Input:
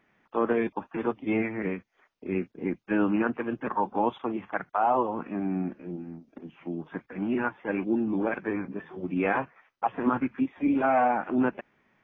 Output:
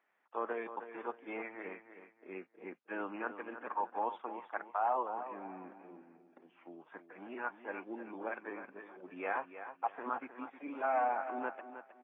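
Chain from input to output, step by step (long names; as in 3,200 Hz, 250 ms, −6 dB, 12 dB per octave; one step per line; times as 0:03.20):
high-pass filter 660 Hz 12 dB per octave
high-shelf EQ 2,300 Hz −11.5 dB
on a send: repeating echo 313 ms, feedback 29%, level −11 dB
on the sum: level −5 dB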